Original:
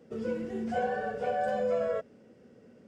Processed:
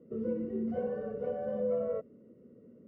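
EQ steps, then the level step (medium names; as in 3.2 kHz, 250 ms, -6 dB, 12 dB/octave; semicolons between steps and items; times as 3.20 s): boxcar filter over 54 samples; distance through air 79 m; bass shelf 160 Hz -10 dB; +5.5 dB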